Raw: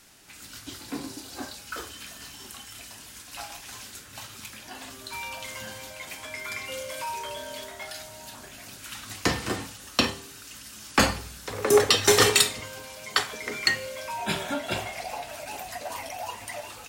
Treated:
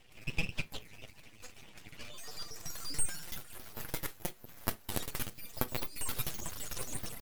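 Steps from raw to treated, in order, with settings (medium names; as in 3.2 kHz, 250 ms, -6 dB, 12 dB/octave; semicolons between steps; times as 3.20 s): reverb removal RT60 1.2 s; compression 16:1, threshold -31 dBFS, peak gain reduction 18.5 dB; pitch shift +11.5 st; band-pass sweep 580 Hz -> 2.7 kHz, 4.67–7.92 s; full-wave rectifier; on a send at -17 dB: reverberation RT60 0.35 s, pre-delay 62 ms; on the sum: speed mistake 33 rpm record played at 78 rpm; trim +10.5 dB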